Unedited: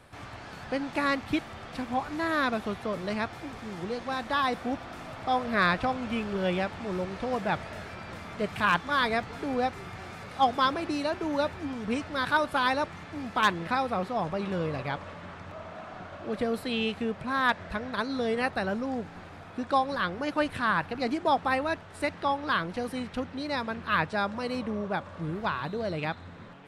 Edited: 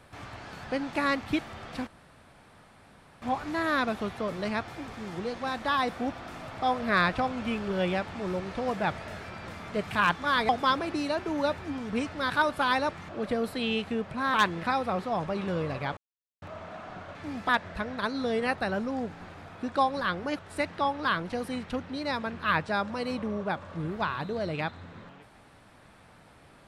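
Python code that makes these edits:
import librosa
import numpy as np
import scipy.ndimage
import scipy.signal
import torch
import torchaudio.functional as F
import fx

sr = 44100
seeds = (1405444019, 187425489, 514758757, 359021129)

y = fx.edit(x, sr, fx.insert_room_tone(at_s=1.87, length_s=1.35),
    fx.cut(start_s=9.14, length_s=1.3),
    fx.swap(start_s=13.04, length_s=0.34, other_s=16.19, other_length_s=1.25),
    fx.silence(start_s=15.01, length_s=0.45),
    fx.cut(start_s=20.34, length_s=1.49), tone=tone)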